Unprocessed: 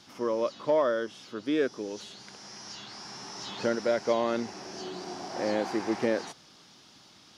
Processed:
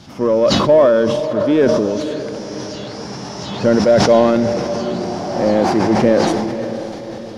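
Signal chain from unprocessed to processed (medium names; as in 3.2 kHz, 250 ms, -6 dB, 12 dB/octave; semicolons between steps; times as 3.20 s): tone controls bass +15 dB, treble -2 dB; in parallel at -5 dB: hard clipper -26 dBFS, distortion -6 dB; on the sum: peaking EQ 610 Hz +7 dB 0.87 oct; echo that smears into a reverb 558 ms, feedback 52%, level -10 dB; decay stretcher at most 26 dB/s; trim +4.5 dB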